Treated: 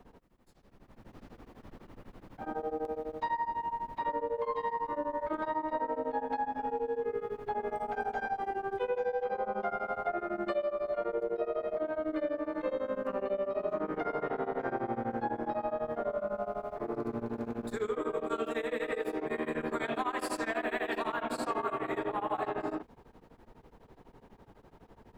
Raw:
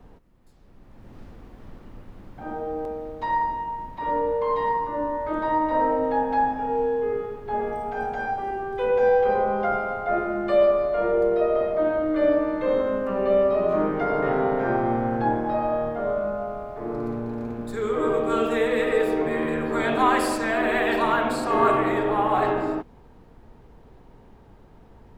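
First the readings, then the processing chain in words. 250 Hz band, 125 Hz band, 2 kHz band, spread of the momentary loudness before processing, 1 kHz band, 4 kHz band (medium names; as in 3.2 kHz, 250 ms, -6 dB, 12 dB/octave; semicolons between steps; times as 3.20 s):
-11.0 dB, -13.0 dB, -10.0 dB, 10 LU, -10.0 dB, no reading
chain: bass shelf 150 Hz -8.5 dB; compression, threshold -28 dBFS, peak gain reduction 12.5 dB; tremolo of two beating tones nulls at 12 Hz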